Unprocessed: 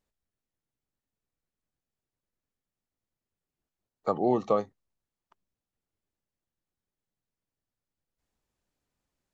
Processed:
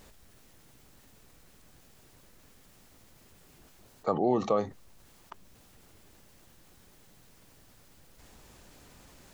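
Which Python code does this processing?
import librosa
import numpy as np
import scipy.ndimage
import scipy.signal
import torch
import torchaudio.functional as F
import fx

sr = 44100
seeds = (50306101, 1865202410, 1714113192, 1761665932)

y = fx.env_flatten(x, sr, amount_pct=50)
y = F.gain(torch.from_numpy(y), -2.5).numpy()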